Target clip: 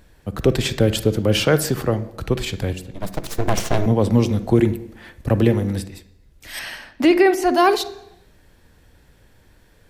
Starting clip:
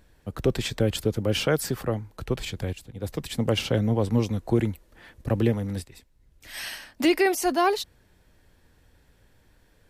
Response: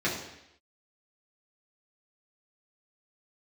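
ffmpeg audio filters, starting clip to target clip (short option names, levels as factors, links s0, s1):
-filter_complex "[0:a]asettb=1/sr,asplit=3[s0][s1][s2];[s0]atrim=end=2.934[s3];[s1]atrim=start=2.93:end=3.86,asetpts=PTS-STARTPTS,afade=t=in:d=0.004:c=qsin,afade=t=out:st=0.926:d=0.004:c=qsin,aeval=exprs='abs(val(0))':c=same[s4];[s2]atrim=start=3.856[s5];[s3][s4]acrossfade=d=0.004:c1=hsin:c2=qsin[s6];[s6][s5]acrossfade=d=0.004:c1=qsin:c2=hsin,asettb=1/sr,asplit=3[s7][s8][s9];[s7]atrim=end=6.594[s10];[s8]atrim=start=6.59:end=7.52,asetpts=PTS-STARTPTS,afade=t=in:d=0.004:c=qsin,afade=t=out:st=0.926:d=0.004:c=qsin,highshelf=f=3900:g=-11.5[s11];[s9]atrim=start=7.516[s12];[s10][s11]acrossfade=d=0.004:c1=hsin:c2=qsin[s13];[s13][s12]acrossfade=d=0.004:c1=qsin:c2=hsin,asplit=2[s14][s15];[1:a]atrim=start_sample=2205,adelay=42[s16];[s15][s16]afir=irnorm=-1:irlink=0,volume=0.0668[s17];[s14][s17]amix=inputs=2:normalize=0,volume=2.11"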